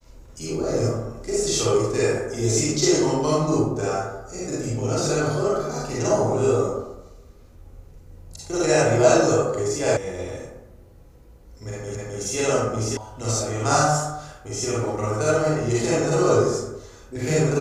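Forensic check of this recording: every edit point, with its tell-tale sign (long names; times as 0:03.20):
0:09.97: cut off before it has died away
0:11.95: the same again, the last 0.26 s
0:12.97: cut off before it has died away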